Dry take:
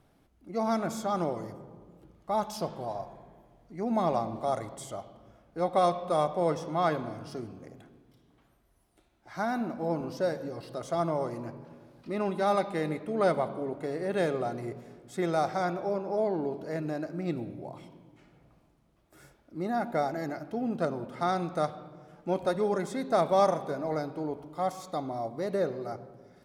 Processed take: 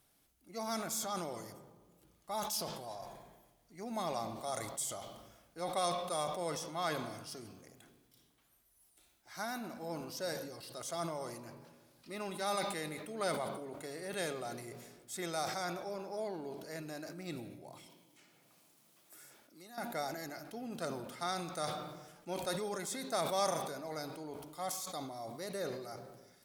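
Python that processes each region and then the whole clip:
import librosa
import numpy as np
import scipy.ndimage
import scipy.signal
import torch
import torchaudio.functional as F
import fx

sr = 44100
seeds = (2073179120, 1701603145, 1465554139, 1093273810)

y = fx.chain(x, sr, fx.highpass(hz=170.0, slope=12),
    fx.band_squash(depth_pct=70), at=(17.86, 19.78))
y = librosa.effects.preemphasis(y, coef=0.9, zi=[0.0])
y = fx.sustainer(y, sr, db_per_s=46.0)
y = y * 10.0 ** (6.5 / 20.0)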